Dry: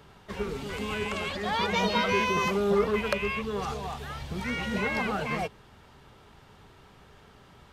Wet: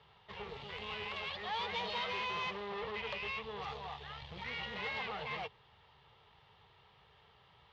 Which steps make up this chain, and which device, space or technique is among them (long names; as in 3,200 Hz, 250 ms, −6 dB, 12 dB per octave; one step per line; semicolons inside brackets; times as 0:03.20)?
scooped metal amplifier (tube saturation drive 30 dB, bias 0.7; loudspeaker in its box 91–3,500 Hz, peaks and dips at 140 Hz +3 dB, 330 Hz +8 dB, 460 Hz +8 dB, 860 Hz +4 dB, 1,500 Hz −9 dB, 2,400 Hz −5 dB; guitar amp tone stack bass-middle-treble 10-0-10)
level +5 dB